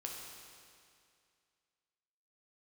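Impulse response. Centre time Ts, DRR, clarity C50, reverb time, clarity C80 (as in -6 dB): 96 ms, -1.0 dB, 1.0 dB, 2.3 s, 2.5 dB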